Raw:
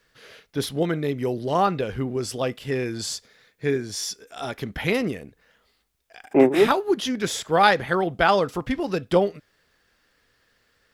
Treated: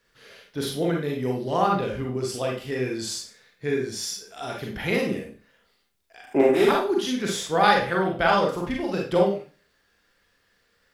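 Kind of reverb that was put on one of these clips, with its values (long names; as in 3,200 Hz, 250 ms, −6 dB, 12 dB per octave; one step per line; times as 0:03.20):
four-comb reverb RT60 0.38 s, combs from 32 ms, DRR −1 dB
level −4.5 dB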